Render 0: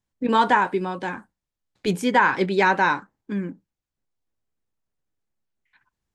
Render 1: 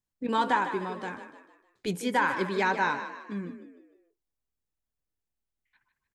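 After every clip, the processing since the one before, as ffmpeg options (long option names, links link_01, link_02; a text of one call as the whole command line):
ffmpeg -i in.wav -filter_complex "[0:a]highshelf=frequency=7000:gain=6.5,asplit=5[link_01][link_02][link_03][link_04][link_05];[link_02]adelay=152,afreqshift=40,volume=-10dB[link_06];[link_03]adelay=304,afreqshift=80,volume=-17.5dB[link_07];[link_04]adelay=456,afreqshift=120,volume=-25.1dB[link_08];[link_05]adelay=608,afreqshift=160,volume=-32.6dB[link_09];[link_01][link_06][link_07][link_08][link_09]amix=inputs=5:normalize=0,volume=-8dB" out.wav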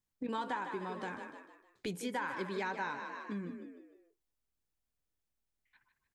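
ffmpeg -i in.wav -af "acompressor=threshold=-38dB:ratio=3" out.wav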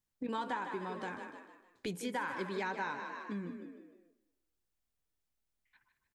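ffmpeg -i in.wav -af "aecho=1:1:205|410|615:0.112|0.037|0.0122" out.wav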